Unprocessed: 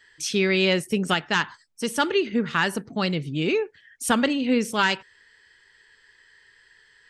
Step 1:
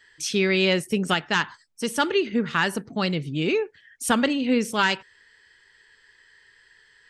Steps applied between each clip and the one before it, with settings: nothing audible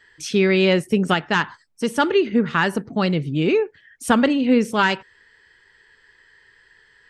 high shelf 2500 Hz -9.5 dB; gain +5.5 dB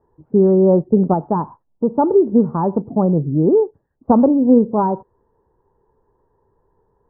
steep low-pass 990 Hz 48 dB/oct; gain +5 dB

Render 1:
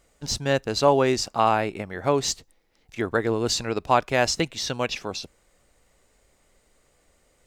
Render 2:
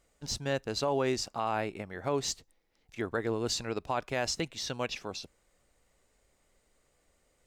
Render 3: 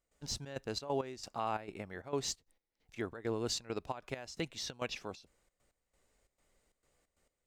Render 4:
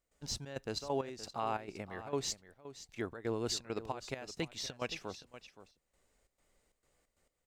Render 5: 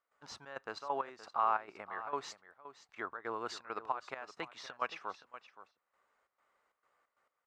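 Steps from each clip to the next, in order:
limiter -12 dBFS, peak gain reduction 7.5 dB; gain -7.5 dB
step gate ".xxx.xx.x..xxx" 134 bpm -12 dB; gain -4 dB
echo 0.521 s -14 dB
band-pass 1200 Hz, Q 2.7; gain +10.5 dB

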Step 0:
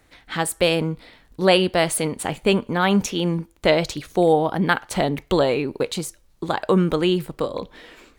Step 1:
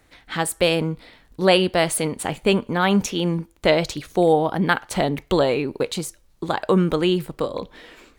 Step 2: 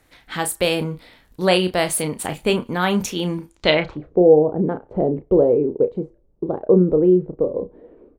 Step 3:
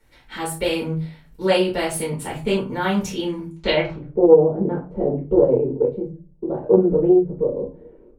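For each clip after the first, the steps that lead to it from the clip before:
nothing audible
low-pass sweep 14000 Hz -> 460 Hz, 3.43–4.09; doubler 33 ms -9.5 dB; gain -1 dB
reverb RT60 0.30 s, pre-delay 4 ms, DRR -6 dB; Doppler distortion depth 0.14 ms; gain -11.5 dB

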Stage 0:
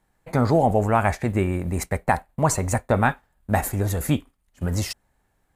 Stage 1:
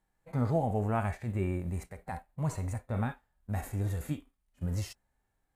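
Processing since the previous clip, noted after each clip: harmonic-percussive split percussive -15 dB; gain -7 dB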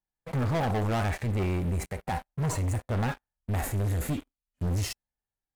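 sample leveller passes 5; gain -6.5 dB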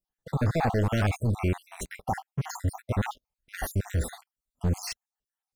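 random spectral dropouts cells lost 56%; gain +4 dB

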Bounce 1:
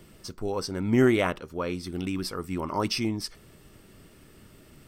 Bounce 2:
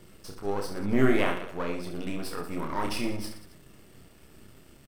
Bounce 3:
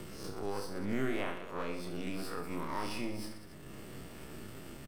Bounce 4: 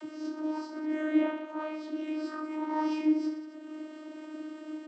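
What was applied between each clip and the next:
half-wave gain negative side -12 dB; dynamic EQ 5500 Hz, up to -7 dB, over -53 dBFS, Q 1.4; reverse bouncing-ball echo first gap 30 ms, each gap 1.3×, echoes 5
spectral swells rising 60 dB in 0.44 s; three-band squash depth 70%; gain -8 dB
vocoder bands 32, saw 309 Hz; gain +8 dB

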